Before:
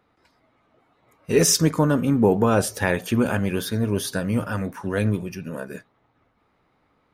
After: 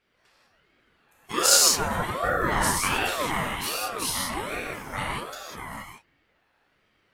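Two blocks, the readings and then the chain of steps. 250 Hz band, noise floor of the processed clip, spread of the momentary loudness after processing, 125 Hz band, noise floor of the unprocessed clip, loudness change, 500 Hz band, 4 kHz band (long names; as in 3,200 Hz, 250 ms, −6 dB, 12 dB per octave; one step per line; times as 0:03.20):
−13.5 dB, −69 dBFS, 20 LU, −13.0 dB, −67 dBFS, −2.0 dB, −8.5 dB, +5.0 dB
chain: high-pass filter 1,300 Hz 6 dB per octave
reverb whose tail is shaped and stops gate 220 ms flat, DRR −6 dB
ring modulator whose carrier an LFO sweeps 680 Hz, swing 45%, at 1.3 Hz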